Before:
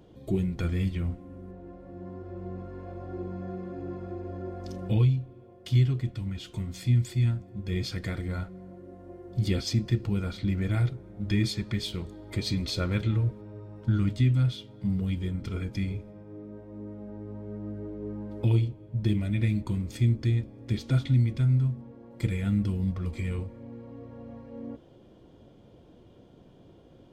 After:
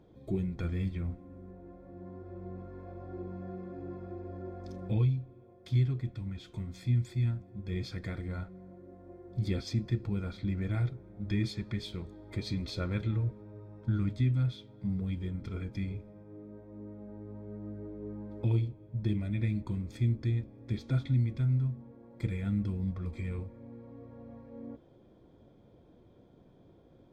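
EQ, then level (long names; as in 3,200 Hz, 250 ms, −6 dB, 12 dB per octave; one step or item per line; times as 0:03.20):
Butterworth band-reject 2,900 Hz, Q 8
high-shelf EQ 5,100 Hz −10 dB
−5.0 dB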